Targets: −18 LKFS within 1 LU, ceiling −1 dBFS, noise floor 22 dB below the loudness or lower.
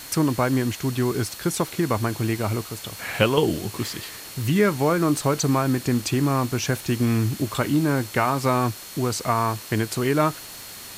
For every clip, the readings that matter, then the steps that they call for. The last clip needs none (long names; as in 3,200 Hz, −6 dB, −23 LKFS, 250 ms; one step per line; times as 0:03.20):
interfering tone 4,300 Hz; level of the tone −46 dBFS; background noise floor −39 dBFS; target noise floor −46 dBFS; integrated loudness −23.5 LKFS; sample peak −4.5 dBFS; target loudness −18.0 LKFS
→ notch filter 4,300 Hz, Q 30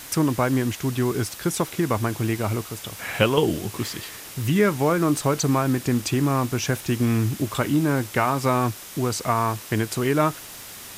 interfering tone none found; background noise floor −40 dBFS; target noise floor −46 dBFS
→ broadband denoise 6 dB, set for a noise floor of −40 dBFS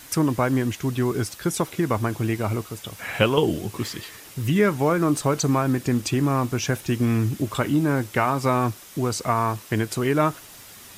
background noise floor −45 dBFS; target noise floor −46 dBFS
→ broadband denoise 6 dB, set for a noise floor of −45 dBFS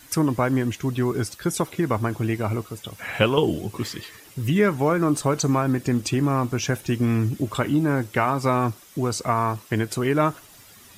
background noise floor −49 dBFS; integrated loudness −23.5 LKFS; sample peak −4.5 dBFS; target loudness −18.0 LKFS
→ level +5.5 dB
brickwall limiter −1 dBFS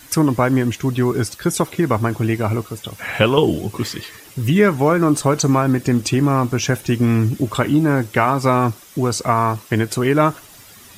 integrated loudness −18.0 LKFS; sample peak −1.0 dBFS; background noise floor −43 dBFS